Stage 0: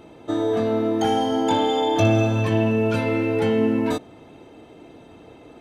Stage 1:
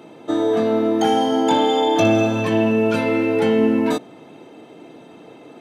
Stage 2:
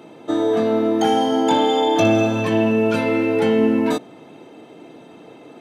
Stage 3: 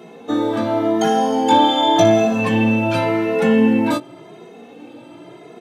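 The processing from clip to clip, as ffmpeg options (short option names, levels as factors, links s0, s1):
-af "highpass=f=140:w=0.5412,highpass=f=140:w=1.3066,volume=1.5"
-af anull
-filter_complex "[0:a]asplit=2[s0][s1];[s1]adelay=17,volume=0.398[s2];[s0][s2]amix=inputs=2:normalize=0,asplit=2[s3][s4];[s4]adelay=2.4,afreqshift=0.9[s5];[s3][s5]amix=inputs=2:normalize=1,volume=1.78"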